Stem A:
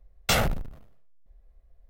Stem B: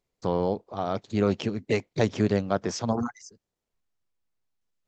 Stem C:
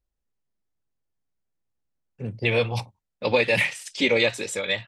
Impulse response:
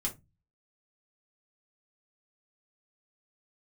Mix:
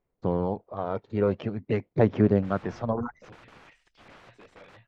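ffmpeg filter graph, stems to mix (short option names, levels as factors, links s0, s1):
-filter_complex "[0:a]adelay=2400,volume=0.1[s0];[1:a]aphaser=in_gain=1:out_gain=1:delay=2.2:decay=0.39:speed=0.47:type=sinusoidal,volume=0.891[s1];[2:a]highshelf=f=2100:g=3,aeval=exprs='(mod(15*val(0)+1,2)-1)/15':c=same,volume=0.158,asplit=2[s2][s3];[s3]apad=whole_len=189863[s4];[s0][s4]sidechaincompress=threshold=0.00355:ratio=8:attack=16:release=715[s5];[s5][s1][s2]amix=inputs=3:normalize=0,lowpass=1800"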